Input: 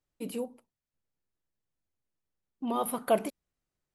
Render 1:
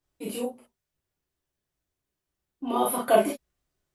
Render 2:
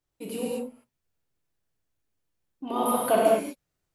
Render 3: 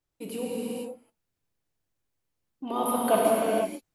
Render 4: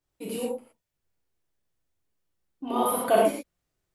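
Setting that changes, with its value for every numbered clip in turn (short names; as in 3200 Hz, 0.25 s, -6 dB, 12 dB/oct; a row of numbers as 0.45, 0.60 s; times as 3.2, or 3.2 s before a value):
non-linear reverb, gate: 80, 260, 520, 140 ms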